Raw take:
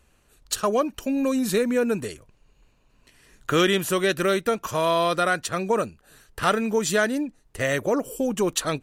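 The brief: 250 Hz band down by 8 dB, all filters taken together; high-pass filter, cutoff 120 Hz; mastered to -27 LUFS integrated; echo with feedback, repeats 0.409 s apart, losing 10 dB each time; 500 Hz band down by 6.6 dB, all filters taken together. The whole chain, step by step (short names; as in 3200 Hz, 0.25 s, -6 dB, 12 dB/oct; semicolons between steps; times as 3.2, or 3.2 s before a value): HPF 120 Hz; bell 250 Hz -8 dB; bell 500 Hz -6 dB; feedback echo 0.409 s, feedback 32%, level -10 dB; gain +0.5 dB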